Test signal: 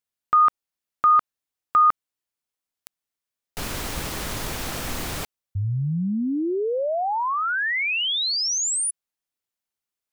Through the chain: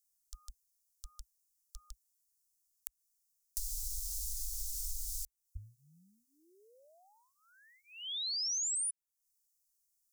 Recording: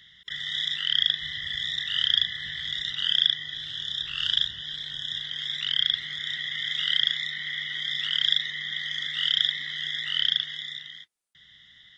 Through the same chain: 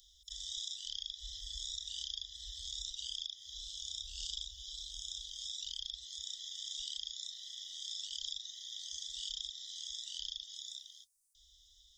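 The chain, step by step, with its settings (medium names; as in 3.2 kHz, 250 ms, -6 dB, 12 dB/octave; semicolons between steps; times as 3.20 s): inverse Chebyshev band-stop 120–2400 Hz, stop band 50 dB; compression 5:1, threshold -48 dBFS; trim +10.5 dB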